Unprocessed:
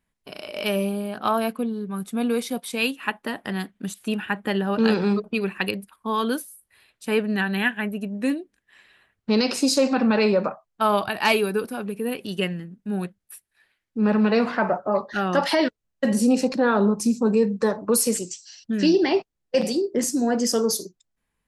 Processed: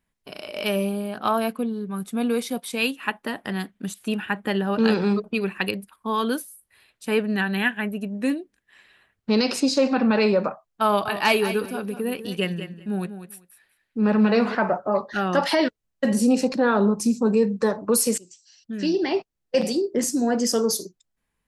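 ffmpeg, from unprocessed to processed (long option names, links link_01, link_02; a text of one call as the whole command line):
ffmpeg -i in.wav -filter_complex "[0:a]asettb=1/sr,asplit=3[link_01][link_02][link_03];[link_01]atrim=end=9.604[link_04];[link_02]atrim=start=9.6:end=10.15,asetpts=PTS-STARTPTS,afade=type=in:duration=0.004:curve=qsin,afade=type=out:start_time=0.546:duration=0.004:curve=qsin,lowpass=5100[link_05];[link_03]atrim=start=10.146[link_06];[link_04][link_05]acrossfade=duration=0.004:curve1=hsin:curve2=qsin[link_07];[link_07][link_06]acrossfade=duration=0.004:curve1=qsin:curve2=hsin,asettb=1/sr,asplit=3[link_08][link_09][link_10];[link_08]atrim=end=10.864[link_11];[link_09]atrim=start=10.86:end=14.55,asetpts=PTS-STARTPTS,afade=type=in:duration=0.004:curve=qsin,afade=type=out:start_time=3.686:duration=0.004:curve=qsin,aecho=1:1:195|390:0.282|0.0423,atrim=end_sample=162729[link_12];[link_10]atrim=start=14.546[link_13];[link_11][link_12]acrossfade=duration=0.004:curve1=hsin:curve2=qsin[link_14];[link_14][link_13]acrossfade=duration=0.004:curve1=qsin:curve2=hsin,asplit=2[link_15][link_16];[link_15]atrim=end=18.18,asetpts=PTS-STARTPTS,afade=type=out:start_time=18.176:duration=0.004:curve=hsin:silence=0.11885[link_17];[link_16]atrim=start=18.18,asetpts=PTS-STARTPTS,afade=type=in:duration=1.37:silence=0.11885[link_18];[link_17][link_18]concat=n=2:v=0:a=1" out.wav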